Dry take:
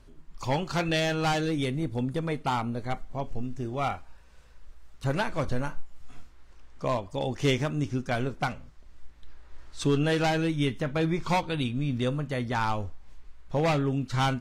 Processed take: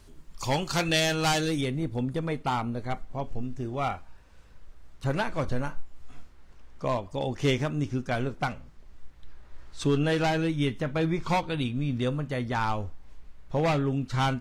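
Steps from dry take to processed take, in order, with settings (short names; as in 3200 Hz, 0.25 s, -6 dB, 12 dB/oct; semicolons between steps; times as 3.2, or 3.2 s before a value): high shelf 3900 Hz +11 dB, from 1.61 s -2.5 dB; added noise brown -58 dBFS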